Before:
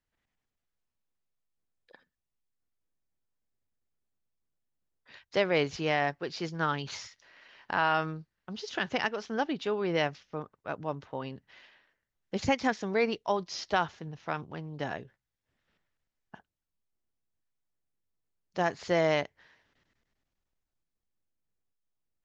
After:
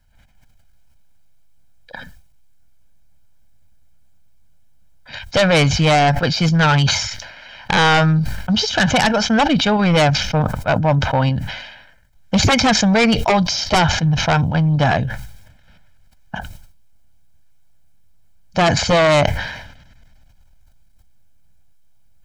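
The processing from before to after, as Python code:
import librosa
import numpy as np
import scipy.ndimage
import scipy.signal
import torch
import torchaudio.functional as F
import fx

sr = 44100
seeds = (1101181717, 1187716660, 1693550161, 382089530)

p1 = fx.low_shelf(x, sr, hz=140.0, db=11.0)
p2 = p1 + 0.86 * np.pad(p1, (int(1.3 * sr / 1000.0), 0))[:len(p1)]
p3 = fx.level_steps(p2, sr, step_db=17)
p4 = p2 + (p3 * 10.0 ** (1.0 / 20.0))
p5 = fx.fold_sine(p4, sr, drive_db=10, ceiling_db=-8.5)
p6 = fx.sustainer(p5, sr, db_per_s=55.0)
y = p6 * 10.0 ** (-1.0 / 20.0)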